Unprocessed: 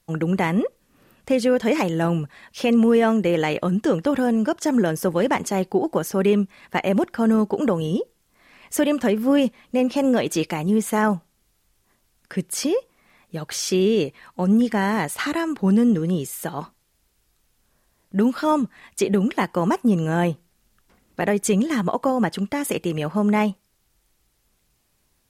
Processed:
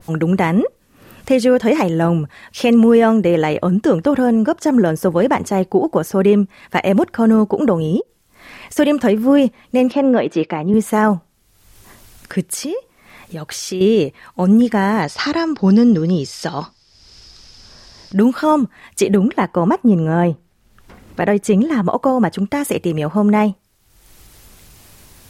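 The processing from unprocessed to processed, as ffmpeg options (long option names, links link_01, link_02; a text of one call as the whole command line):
ffmpeg -i in.wav -filter_complex "[0:a]asplit=3[link_01][link_02][link_03];[link_01]afade=type=out:start_time=8:duration=0.02[link_04];[link_02]acompressor=threshold=-41dB:ratio=4:attack=3.2:release=140:knee=1:detection=peak,afade=type=in:start_time=8:duration=0.02,afade=type=out:start_time=8.76:duration=0.02[link_05];[link_03]afade=type=in:start_time=8.76:duration=0.02[link_06];[link_04][link_05][link_06]amix=inputs=3:normalize=0,asettb=1/sr,asplit=3[link_07][link_08][link_09];[link_07]atrim=end=9.924[link_10];[link_08]atrim=start=9.92:end=10.74,asetpts=PTS-STARTPTS,afade=type=in:duration=0.004:curve=qsin,afade=type=out:start_time=0.816:duration=0.004:curve=qsin,highpass=180,lowpass=3000[link_11];[link_09]atrim=start=10.736[link_12];[link_10][link_11]acrossfade=duration=0.004:curve1=hsin:curve2=qsin[link_13];[link_13][link_12]acrossfade=duration=0.004:curve1=qsin:curve2=hsin,asettb=1/sr,asplit=3[link_14][link_15][link_16];[link_14]atrim=end=12.554[link_17];[link_15]atrim=start=12.55:end=13.81,asetpts=PTS-STARTPTS,afade=type=in:duration=0.004:curve=qsin,afade=type=out:start_time=1.256:duration=0.004:curve=qsin,acompressor=threshold=-32dB:ratio=2:attack=3.2:release=140:knee=1:detection=peak[link_18];[link_16]atrim=start=13.806[link_19];[link_17][link_18]acrossfade=duration=0.004:curve1=hsin:curve2=qsin[link_20];[link_20][link_19]acrossfade=duration=0.004:curve1=qsin:curve2=hsin,asettb=1/sr,asplit=3[link_21][link_22][link_23];[link_21]atrim=end=15.024[link_24];[link_22]atrim=start=15.02:end=18.18,asetpts=PTS-STARTPTS,afade=type=in:duration=0.004:curve=qsin,afade=type=out:start_time=3.156:duration=0.004:curve=qsin,lowpass=frequency=5100:width_type=q:width=8.2[link_25];[link_23]atrim=start=18.176[link_26];[link_24][link_25]acrossfade=duration=0.004:curve1=hsin:curve2=qsin[link_27];[link_27][link_26]acrossfade=duration=0.004:curve1=qsin:curve2=hsin,asettb=1/sr,asplit=3[link_28][link_29][link_30];[link_28]atrim=end=19.164[link_31];[link_29]atrim=start=19.16:end=21.85,asetpts=PTS-STARTPTS,afade=type=in:duration=0.004:curve=qsin,afade=type=out:start_time=2.686:duration=0.004:curve=qsin,highshelf=frequency=4300:gain=-9.5[link_32];[link_30]atrim=start=21.846[link_33];[link_31][link_32]acrossfade=duration=0.004:curve1=hsin:curve2=qsin[link_34];[link_34][link_33]acrossfade=duration=0.004:curve1=qsin:curve2=hsin,equalizer=frequency=94:width_type=o:width=0.23:gain=8,acompressor=mode=upward:threshold=-35dB:ratio=2.5,adynamicequalizer=threshold=0.0112:dfrequency=1700:dqfactor=0.7:tfrequency=1700:tqfactor=0.7:attack=5:release=100:ratio=0.375:range=3.5:mode=cutabove:tftype=highshelf,volume=6dB" out.wav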